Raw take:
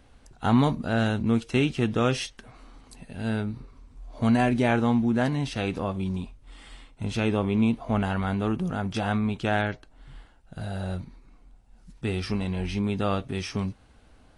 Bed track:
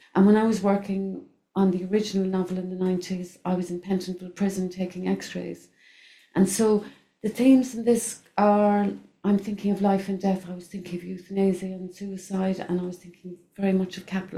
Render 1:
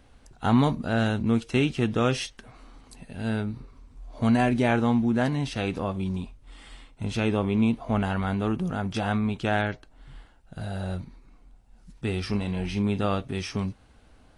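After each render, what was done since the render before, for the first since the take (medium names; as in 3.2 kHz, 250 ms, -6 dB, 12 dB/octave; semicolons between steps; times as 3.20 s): 12.29–13.06 s: doubling 39 ms -12 dB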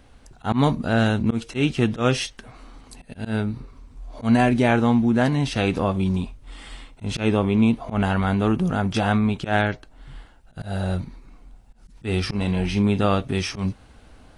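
in parallel at -1 dB: gain riding within 3 dB; on the sum: slow attack 107 ms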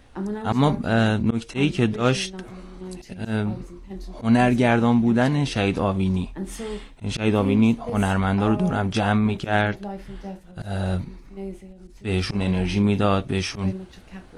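add bed track -11.5 dB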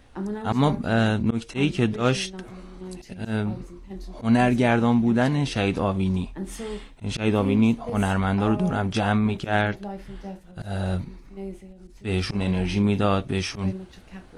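trim -1.5 dB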